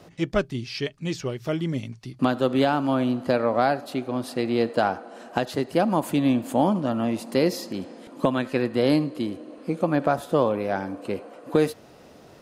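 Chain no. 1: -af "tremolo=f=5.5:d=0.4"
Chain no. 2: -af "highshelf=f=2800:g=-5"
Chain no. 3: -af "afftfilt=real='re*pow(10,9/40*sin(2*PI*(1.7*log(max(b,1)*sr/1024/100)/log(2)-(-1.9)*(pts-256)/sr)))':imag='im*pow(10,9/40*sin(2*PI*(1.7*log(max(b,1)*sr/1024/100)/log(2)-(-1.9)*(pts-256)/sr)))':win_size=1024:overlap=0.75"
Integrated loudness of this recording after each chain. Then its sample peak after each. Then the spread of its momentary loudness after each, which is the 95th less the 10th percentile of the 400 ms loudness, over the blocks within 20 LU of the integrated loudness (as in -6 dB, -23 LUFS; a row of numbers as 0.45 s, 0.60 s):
-27.0 LUFS, -25.5 LUFS, -24.0 LUFS; -8.0 dBFS, -6.5 dBFS, -4.5 dBFS; 10 LU, 10 LU, 10 LU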